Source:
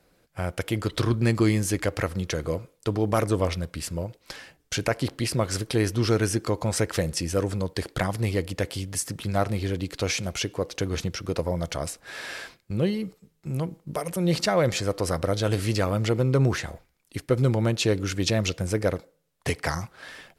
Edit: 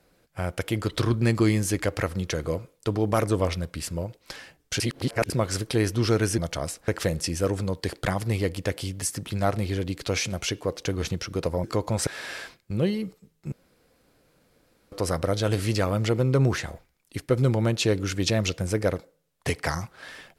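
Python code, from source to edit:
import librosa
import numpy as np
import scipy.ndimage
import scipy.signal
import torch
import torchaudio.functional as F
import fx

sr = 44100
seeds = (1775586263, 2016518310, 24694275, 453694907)

y = fx.edit(x, sr, fx.reverse_span(start_s=4.8, length_s=0.5),
    fx.swap(start_s=6.38, length_s=0.43, other_s=11.57, other_length_s=0.5),
    fx.room_tone_fill(start_s=13.52, length_s=1.4), tone=tone)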